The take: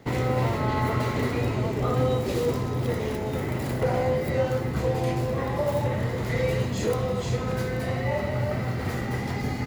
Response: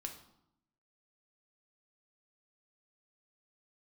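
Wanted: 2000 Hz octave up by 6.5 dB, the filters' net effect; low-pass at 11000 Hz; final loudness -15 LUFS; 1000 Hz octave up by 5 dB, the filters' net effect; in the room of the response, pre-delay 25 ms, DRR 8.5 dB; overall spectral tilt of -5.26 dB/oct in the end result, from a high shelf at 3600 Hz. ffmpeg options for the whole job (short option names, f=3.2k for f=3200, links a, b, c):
-filter_complex "[0:a]lowpass=11k,equalizer=f=1k:t=o:g=5,equalizer=f=2k:t=o:g=5,highshelf=f=3.6k:g=4,asplit=2[a][b];[1:a]atrim=start_sample=2205,adelay=25[c];[b][c]afir=irnorm=-1:irlink=0,volume=-6dB[d];[a][d]amix=inputs=2:normalize=0,volume=9.5dB"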